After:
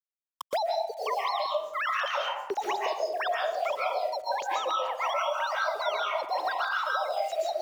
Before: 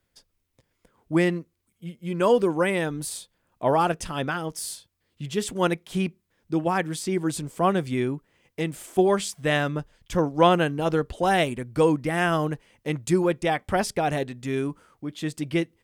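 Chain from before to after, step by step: sine-wave speech; LPF 1900 Hz 6 dB/oct; reverse; compressor 20:1, threshold -29 dBFS, peak gain reduction 20.5 dB; reverse; limiter -28.5 dBFS, peak gain reduction 6 dB; bit-crush 10-bit; wide varispeed 2.08×; reverb RT60 0.65 s, pre-delay 0.1 s, DRR -4 dB; three-band squash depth 100%

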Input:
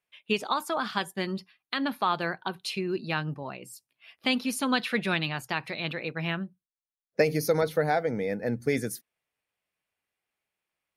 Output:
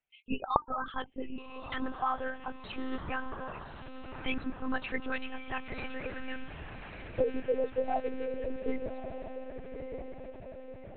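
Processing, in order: spectral gate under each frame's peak -10 dB strong; low shelf 64 Hz -10 dB; diffused feedback echo 1.204 s, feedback 56%, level -8 dB; monotone LPC vocoder at 8 kHz 260 Hz; gain -4 dB

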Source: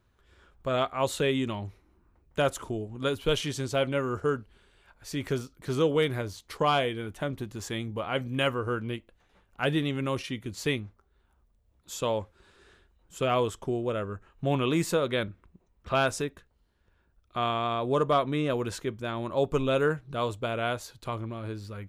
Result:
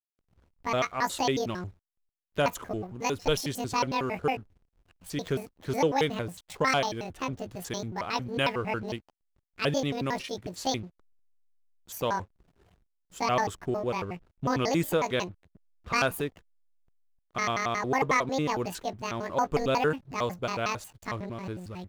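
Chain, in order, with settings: trilling pitch shifter +10 st, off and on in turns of 91 ms; backlash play -48.5 dBFS

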